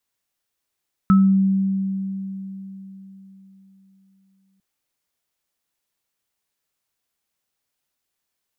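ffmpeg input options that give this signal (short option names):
-f lavfi -i "aevalsrc='0.335*pow(10,-3*t/3.98)*sin(2*PI*193*t)+0.133*pow(10,-3*t/0.31)*sin(2*PI*1300*t)':d=3.5:s=44100"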